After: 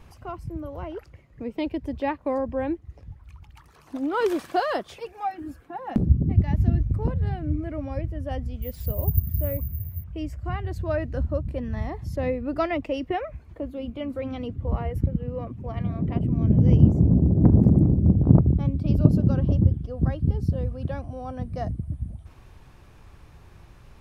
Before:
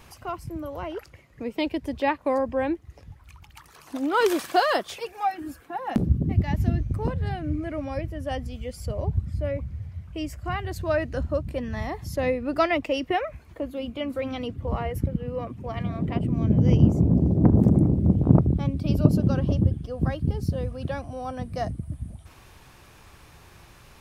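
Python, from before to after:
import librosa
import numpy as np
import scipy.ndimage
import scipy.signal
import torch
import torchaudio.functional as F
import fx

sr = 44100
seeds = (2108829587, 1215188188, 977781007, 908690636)

y = fx.resample_bad(x, sr, factor=3, down='none', up='zero_stuff', at=(8.62, 10.04))
y = fx.tilt_eq(y, sr, slope=-2.0)
y = F.gain(torch.from_numpy(y), -4.0).numpy()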